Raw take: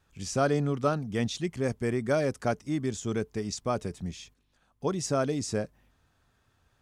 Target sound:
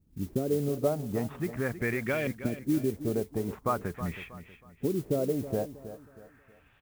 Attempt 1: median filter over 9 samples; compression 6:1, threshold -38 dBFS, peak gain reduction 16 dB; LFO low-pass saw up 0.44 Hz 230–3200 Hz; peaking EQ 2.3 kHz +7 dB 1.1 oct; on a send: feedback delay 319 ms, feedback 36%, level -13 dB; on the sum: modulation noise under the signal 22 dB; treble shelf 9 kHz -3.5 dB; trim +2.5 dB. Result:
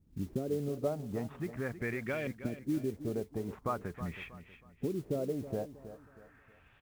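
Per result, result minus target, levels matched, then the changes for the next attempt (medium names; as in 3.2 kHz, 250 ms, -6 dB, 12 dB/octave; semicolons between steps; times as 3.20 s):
compression: peak gain reduction +6 dB; 8 kHz band -3.0 dB
change: compression 6:1, threshold -31 dBFS, peak gain reduction 10.5 dB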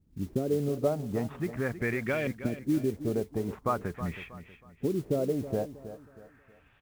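8 kHz band -3.5 dB
change: treble shelf 9 kHz +4.5 dB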